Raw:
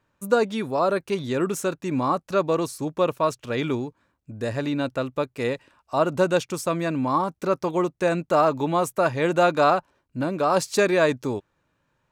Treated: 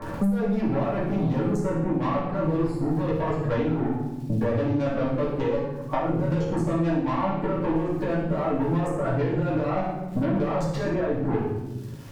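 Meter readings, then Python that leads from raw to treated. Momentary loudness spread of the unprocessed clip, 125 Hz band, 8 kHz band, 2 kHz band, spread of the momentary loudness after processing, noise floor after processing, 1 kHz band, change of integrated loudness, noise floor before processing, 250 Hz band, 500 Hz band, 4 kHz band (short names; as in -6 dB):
9 LU, +6.0 dB, under -10 dB, -7.5 dB, 3 LU, -34 dBFS, -6.0 dB, -2.0 dB, -74 dBFS, +2.5 dB, -4.0 dB, -10.5 dB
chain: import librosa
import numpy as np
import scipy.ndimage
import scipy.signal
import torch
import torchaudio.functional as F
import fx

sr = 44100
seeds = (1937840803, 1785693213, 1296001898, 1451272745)

y = fx.wiener(x, sr, points=15)
y = fx.dereverb_blind(y, sr, rt60_s=1.5)
y = fx.lowpass(y, sr, hz=1300.0, slope=6)
y = fx.transient(y, sr, attack_db=0, sustain_db=5)
y = fx.over_compress(y, sr, threshold_db=-30.0, ratio=-1.0)
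y = fx.dmg_crackle(y, sr, seeds[0], per_s=84.0, level_db=-54.0)
y = fx.tube_stage(y, sr, drive_db=28.0, bias=0.4)
y = fx.room_flutter(y, sr, wall_m=9.5, rt60_s=0.41)
y = fx.room_shoebox(y, sr, seeds[1], volume_m3=120.0, walls='mixed', distance_m=2.3)
y = fx.band_squash(y, sr, depth_pct=100)
y = F.gain(torch.from_numpy(y), -2.0).numpy()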